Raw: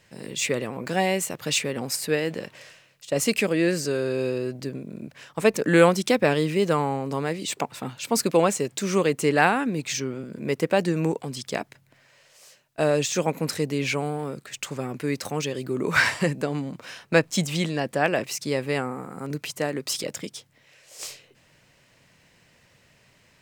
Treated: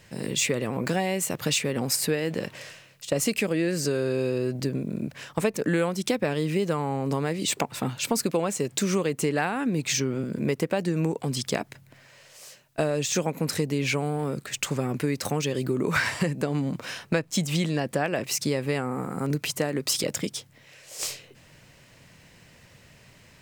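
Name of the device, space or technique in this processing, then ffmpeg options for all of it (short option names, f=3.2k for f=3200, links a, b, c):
ASMR close-microphone chain: -af "lowshelf=f=220:g=5.5,acompressor=threshold=-26dB:ratio=6,highshelf=f=9.2k:g=3.5,volume=4dB"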